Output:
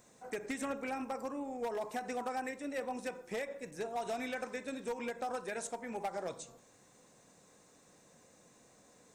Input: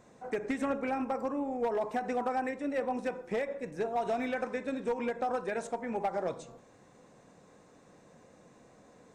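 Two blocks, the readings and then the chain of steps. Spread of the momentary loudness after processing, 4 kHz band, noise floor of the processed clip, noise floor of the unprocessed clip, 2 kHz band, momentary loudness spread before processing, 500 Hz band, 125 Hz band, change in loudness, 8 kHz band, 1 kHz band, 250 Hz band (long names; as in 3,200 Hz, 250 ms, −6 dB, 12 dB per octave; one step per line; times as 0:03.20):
4 LU, +1.0 dB, −64 dBFS, −60 dBFS, −3.0 dB, 4 LU, −6.5 dB, −7.0 dB, −6.0 dB, +6.0 dB, −6.0 dB, −7.0 dB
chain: first-order pre-emphasis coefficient 0.8
level +7 dB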